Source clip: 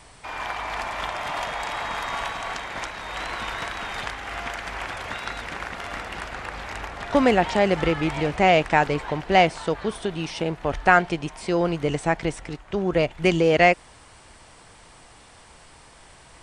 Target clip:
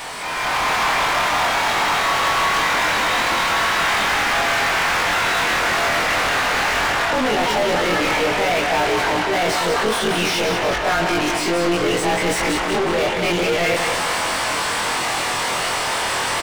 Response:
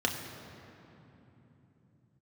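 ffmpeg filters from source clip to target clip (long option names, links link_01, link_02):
-filter_complex "[0:a]afftfilt=real='re':imag='-im':win_size=2048:overlap=0.75,areverse,acompressor=threshold=-39dB:ratio=5,areverse,asplit=2[link_01][link_02];[link_02]highpass=frequency=720:poles=1,volume=36dB,asoftclip=type=tanh:threshold=-26dB[link_03];[link_01][link_03]amix=inputs=2:normalize=0,lowpass=frequency=4200:poles=1,volume=-6dB,aecho=1:1:183|366|549|732|915|1098:0.501|0.256|0.13|0.0665|0.0339|0.0173,dynaudnorm=framelen=190:gausssize=5:maxgain=8dB,volume=4.5dB"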